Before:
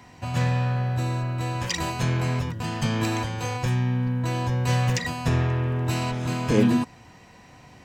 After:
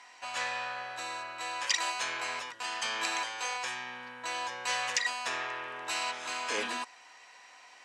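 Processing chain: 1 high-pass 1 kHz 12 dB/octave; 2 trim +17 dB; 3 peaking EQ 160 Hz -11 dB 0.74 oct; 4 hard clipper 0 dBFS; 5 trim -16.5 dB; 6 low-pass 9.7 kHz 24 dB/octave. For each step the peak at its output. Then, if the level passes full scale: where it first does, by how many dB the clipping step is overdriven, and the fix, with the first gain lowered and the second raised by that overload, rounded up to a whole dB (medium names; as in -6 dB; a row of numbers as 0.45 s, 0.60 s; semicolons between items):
-13.5 dBFS, +3.5 dBFS, +3.5 dBFS, 0.0 dBFS, -16.5 dBFS, -15.0 dBFS; step 2, 3.5 dB; step 2 +13 dB, step 5 -12.5 dB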